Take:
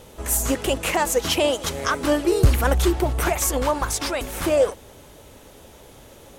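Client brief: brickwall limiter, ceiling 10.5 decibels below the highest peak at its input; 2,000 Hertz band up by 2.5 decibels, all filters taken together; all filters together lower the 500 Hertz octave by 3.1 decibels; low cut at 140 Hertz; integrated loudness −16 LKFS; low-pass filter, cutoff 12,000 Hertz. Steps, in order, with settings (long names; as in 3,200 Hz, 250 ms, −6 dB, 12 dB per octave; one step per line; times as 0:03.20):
high-pass filter 140 Hz
low-pass filter 12,000 Hz
parametric band 500 Hz −4 dB
parametric band 2,000 Hz +3.5 dB
level +11 dB
brickwall limiter −6.5 dBFS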